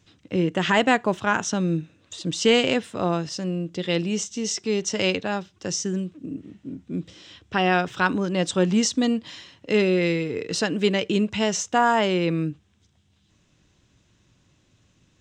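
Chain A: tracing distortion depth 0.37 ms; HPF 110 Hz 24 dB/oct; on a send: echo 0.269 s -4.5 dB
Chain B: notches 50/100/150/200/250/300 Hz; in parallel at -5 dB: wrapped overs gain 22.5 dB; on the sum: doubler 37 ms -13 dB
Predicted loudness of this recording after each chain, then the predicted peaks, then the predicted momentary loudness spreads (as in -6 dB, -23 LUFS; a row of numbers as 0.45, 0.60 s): -22.5, -23.0 LUFS; -4.0, -6.5 dBFS; 12, 11 LU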